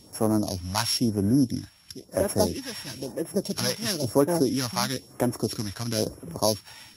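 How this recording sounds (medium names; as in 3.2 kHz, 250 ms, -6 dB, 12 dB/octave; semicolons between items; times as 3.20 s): a buzz of ramps at a fixed pitch in blocks of 8 samples; phasing stages 2, 1 Hz, lowest notch 330–4200 Hz; Vorbis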